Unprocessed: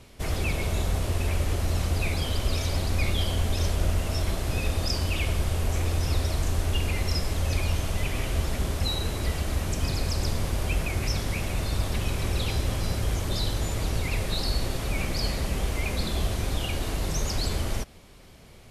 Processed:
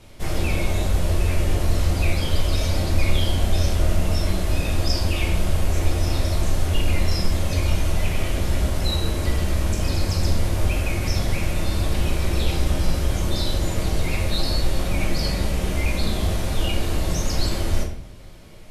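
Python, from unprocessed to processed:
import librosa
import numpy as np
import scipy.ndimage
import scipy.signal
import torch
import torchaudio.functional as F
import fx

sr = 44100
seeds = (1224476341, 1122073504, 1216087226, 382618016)

y = fx.room_shoebox(x, sr, seeds[0], volume_m3=100.0, walls='mixed', distance_m=0.92)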